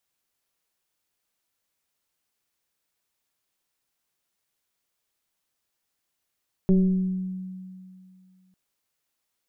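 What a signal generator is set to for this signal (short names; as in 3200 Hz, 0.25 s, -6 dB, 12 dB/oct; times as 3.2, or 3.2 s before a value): FM tone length 1.85 s, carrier 186 Hz, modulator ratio 1.04, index 0.81, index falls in 1.43 s exponential, decay 2.42 s, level -14 dB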